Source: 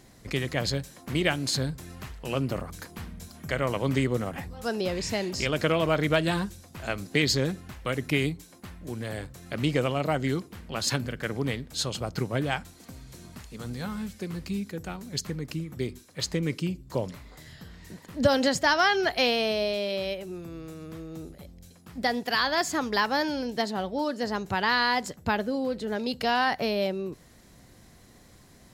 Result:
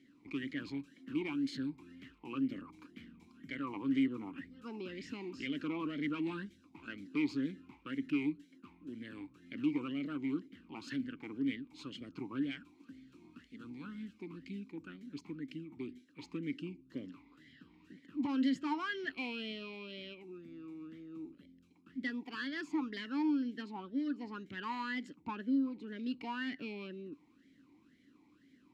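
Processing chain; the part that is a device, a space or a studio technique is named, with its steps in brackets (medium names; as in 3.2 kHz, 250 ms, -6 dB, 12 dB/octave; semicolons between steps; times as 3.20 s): talk box (valve stage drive 21 dB, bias 0.35; talking filter i-u 2 Hz); trim +2.5 dB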